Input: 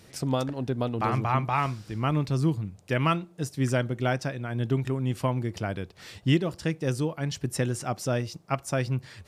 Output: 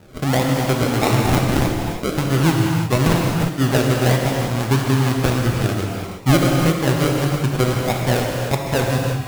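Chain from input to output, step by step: 1.36–2.18 s: high-pass 540 Hz 12 dB/octave; decimation with a swept rate 39×, swing 60% 1.6 Hz; gated-style reverb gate 380 ms flat, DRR -0.5 dB; trim +7 dB

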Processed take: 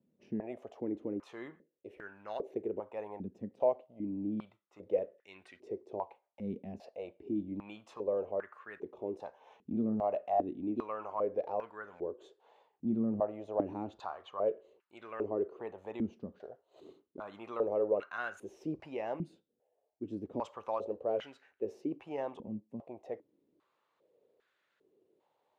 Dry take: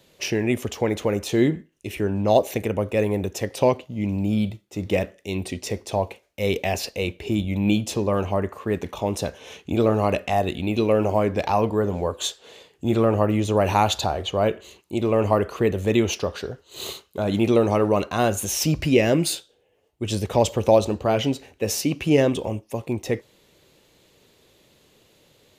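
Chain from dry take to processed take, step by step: step-sequenced band-pass 2.5 Hz 220–1500 Hz; trim -5.5 dB

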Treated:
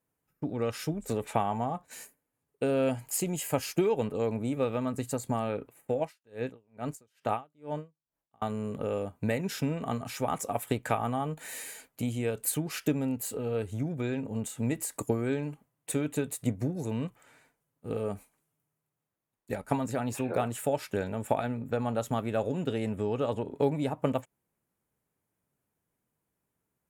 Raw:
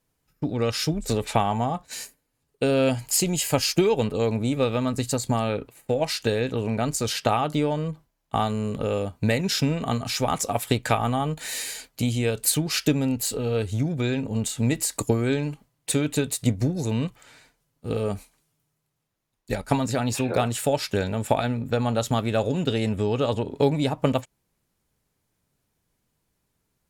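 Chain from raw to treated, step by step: high-pass 140 Hz 6 dB/octave; peaking EQ 4.5 kHz -12 dB 1.3 oct; 6.01–8.42 s: logarithmic tremolo 2.3 Hz, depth 38 dB; trim -5 dB

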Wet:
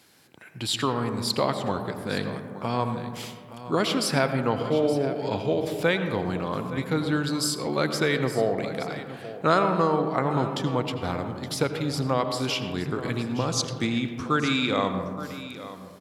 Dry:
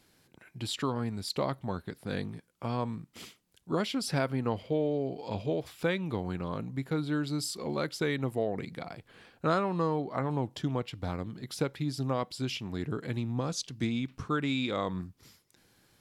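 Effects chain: high-pass 110 Hz; peaking EQ 200 Hz -4.5 dB 2.7 oct; delay 869 ms -14.5 dB; on a send at -7.5 dB: reverberation RT60 1.8 s, pre-delay 77 ms; on the sum: trim +8.5 dB

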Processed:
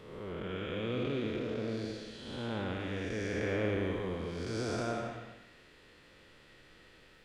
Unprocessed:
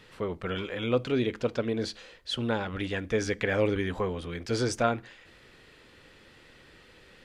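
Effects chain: spectral blur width 336 ms; algorithmic reverb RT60 0.84 s, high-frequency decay 0.8×, pre-delay 80 ms, DRR 5 dB; trim -3.5 dB

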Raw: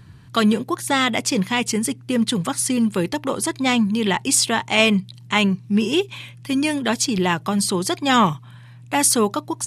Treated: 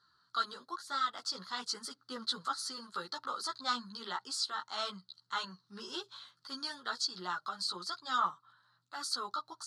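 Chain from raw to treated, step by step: two resonant band-passes 2.4 kHz, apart 1.7 oct; gain riding within 3 dB 0.5 s; chorus voices 6, 0.98 Hz, delay 14 ms, depth 3 ms

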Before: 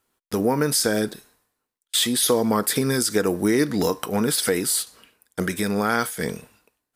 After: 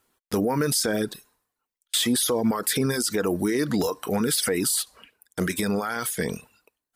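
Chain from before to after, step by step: peak limiter -17 dBFS, peak gain reduction 10 dB; reverb removal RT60 0.62 s; trim +3.5 dB

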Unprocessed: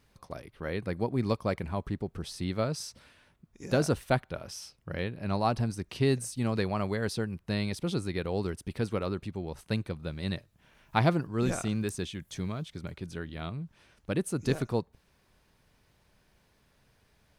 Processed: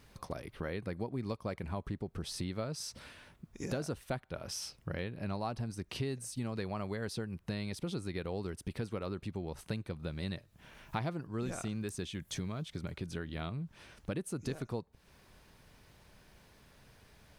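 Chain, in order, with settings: compression 4:1, threshold -43 dBFS, peak gain reduction 19.5 dB; trim +6 dB

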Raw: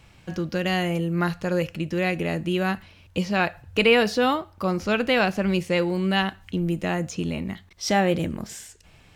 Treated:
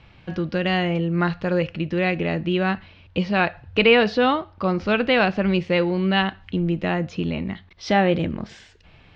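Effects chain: low-pass 4.2 kHz 24 dB/octave; trim +2.5 dB

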